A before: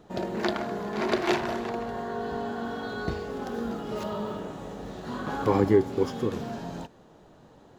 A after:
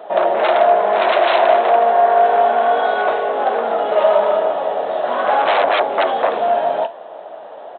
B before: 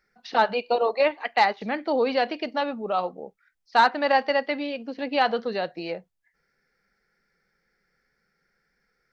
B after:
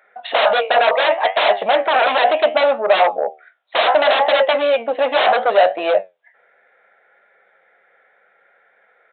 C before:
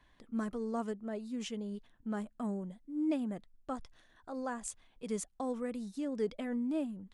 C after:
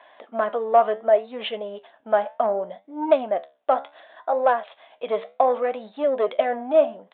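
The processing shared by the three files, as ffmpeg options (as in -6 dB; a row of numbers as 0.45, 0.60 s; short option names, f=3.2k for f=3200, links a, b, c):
-af "acontrast=31,flanger=delay=9:depth=7:regen=73:speed=0.68:shape=triangular,aresample=8000,aeval=exprs='0.447*sin(PI/2*8.91*val(0)/0.447)':c=same,aresample=44100,highpass=f=640:t=q:w=4.9,volume=-8.5dB"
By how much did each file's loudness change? +14.5, +9.0, +15.5 LU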